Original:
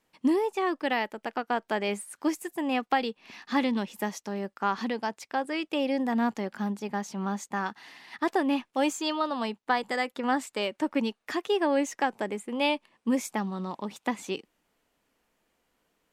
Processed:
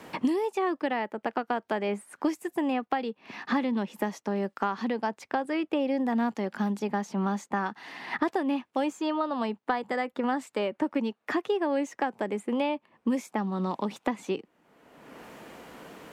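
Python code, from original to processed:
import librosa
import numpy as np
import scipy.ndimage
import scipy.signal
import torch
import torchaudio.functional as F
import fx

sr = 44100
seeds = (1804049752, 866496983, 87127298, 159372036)

y = scipy.signal.sosfilt(scipy.signal.butter(2, 100.0, 'highpass', fs=sr, output='sos'), x)
y = fx.high_shelf(y, sr, hz=2700.0, db=-11.0)
y = fx.band_squash(y, sr, depth_pct=100)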